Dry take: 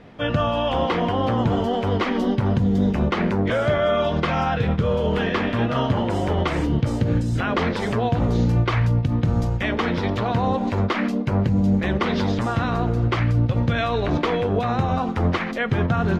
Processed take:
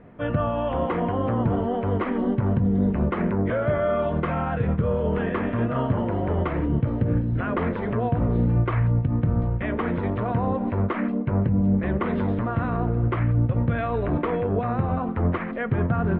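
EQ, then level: low-pass 2.3 kHz 12 dB/octave; distance through air 400 m; band-stop 810 Hz, Q 12; -1.5 dB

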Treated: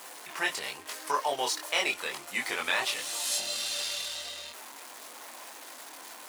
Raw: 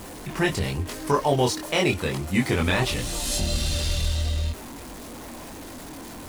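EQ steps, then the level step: high-pass 820 Hz 12 dB/octave; -2.0 dB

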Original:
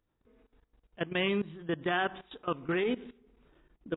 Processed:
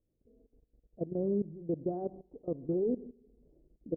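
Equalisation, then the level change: steep low-pass 600 Hz 36 dB/octave; 0.0 dB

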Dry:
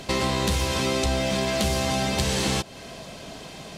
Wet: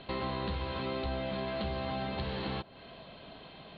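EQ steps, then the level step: dynamic bell 3.3 kHz, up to -5 dB, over -42 dBFS, Q 1.1; rippled Chebyshev low-pass 4.3 kHz, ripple 3 dB; -8.0 dB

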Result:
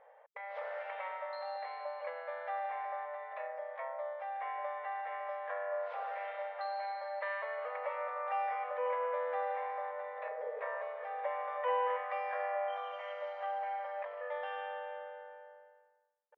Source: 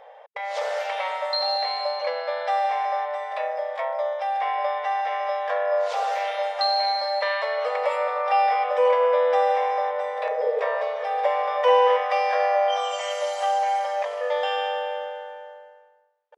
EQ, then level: dynamic bell 450 Hz, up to -7 dB, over -38 dBFS, Q 4.5; four-pole ladder low-pass 2.5 kHz, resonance 25%; peaking EQ 740 Hz -3.5 dB 0.34 oct; -7.0 dB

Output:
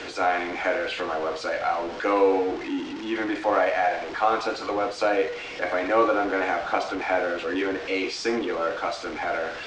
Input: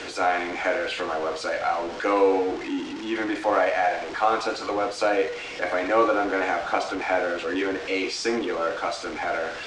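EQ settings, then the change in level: distance through air 110 m; treble shelf 7.9 kHz +10.5 dB; 0.0 dB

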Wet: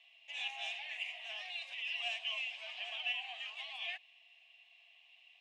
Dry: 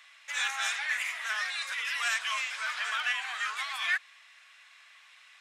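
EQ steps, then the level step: two resonant band-passes 1.4 kHz, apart 2 oct; +1.0 dB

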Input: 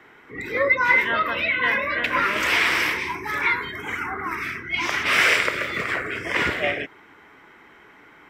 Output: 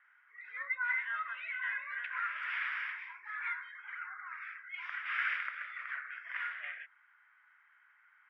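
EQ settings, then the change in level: ladder high-pass 1.3 kHz, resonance 55%; distance through air 430 m; band-stop 4.1 kHz, Q 7; -7.0 dB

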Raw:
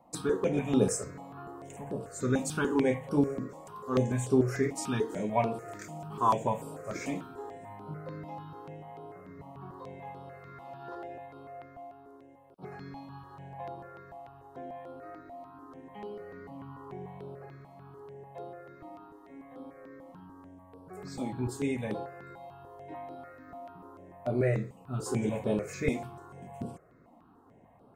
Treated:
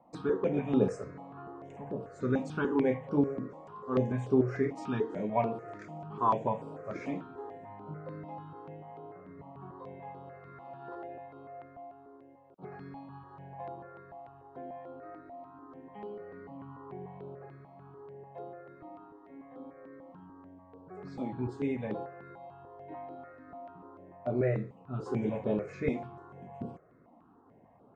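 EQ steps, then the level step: distance through air 150 m; bass shelf 74 Hz -9.5 dB; treble shelf 3.1 kHz -9.5 dB; 0.0 dB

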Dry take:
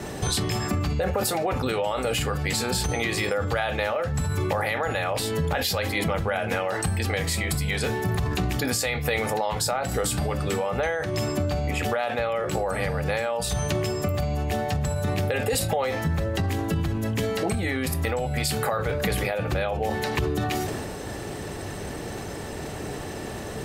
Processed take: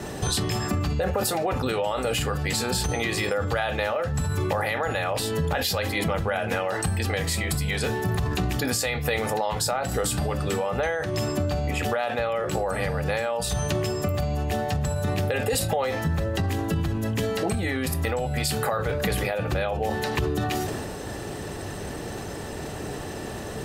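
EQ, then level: band-stop 2.2 kHz, Q 19; 0.0 dB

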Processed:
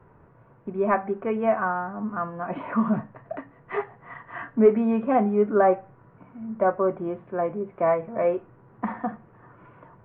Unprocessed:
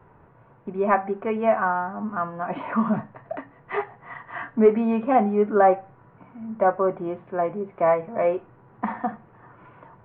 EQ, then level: peaking EQ 820 Hz -4 dB 0.52 oct; treble shelf 2.9 kHz -9 dB; 0.0 dB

